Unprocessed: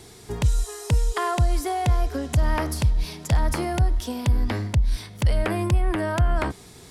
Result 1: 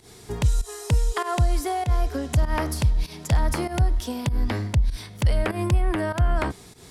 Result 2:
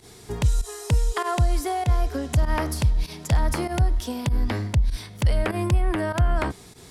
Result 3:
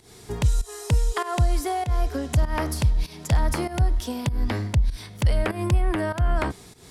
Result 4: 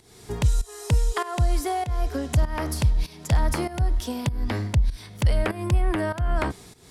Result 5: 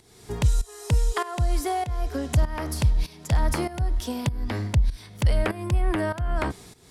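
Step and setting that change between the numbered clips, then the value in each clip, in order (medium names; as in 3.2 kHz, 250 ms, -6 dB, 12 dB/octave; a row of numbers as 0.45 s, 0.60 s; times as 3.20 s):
volume shaper, release: 129 ms, 76 ms, 199 ms, 345 ms, 515 ms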